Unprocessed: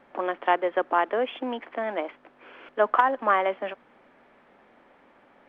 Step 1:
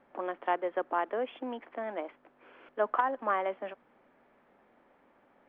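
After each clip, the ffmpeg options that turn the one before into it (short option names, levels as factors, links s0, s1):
-af "highshelf=f=2300:g=-7.5,volume=0.473"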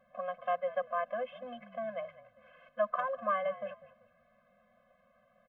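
-filter_complex "[0:a]asplit=4[s0][s1][s2][s3];[s1]adelay=195,afreqshift=-48,volume=0.141[s4];[s2]adelay=390,afreqshift=-96,volume=0.0468[s5];[s3]adelay=585,afreqshift=-144,volume=0.0153[s6];[s0][s4][s5][s6]amix=inputs=4:normalize=0,afftfilt=real='re*eq(mod(floor(b*sr/1024/250),2),0)':imag='im*eq(mod(floor(b*sr/1024/250),2),0)':win_size=1024:overlap=0.75"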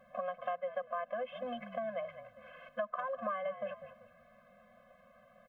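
-af "acompressor=threshold=0.00891:ratio=5,volume=2"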